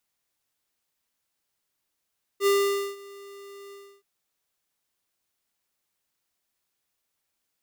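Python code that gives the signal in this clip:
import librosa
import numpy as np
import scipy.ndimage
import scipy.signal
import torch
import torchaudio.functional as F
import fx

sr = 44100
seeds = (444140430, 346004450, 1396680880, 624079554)

y = fx.adsr_tone(sr, wave='square', hz=399.0, attack_ms=65.0, decay_ms=492.0, sustain_db=-24.0, held_s=1.32, release_ms=306.0, level_db=-20.0)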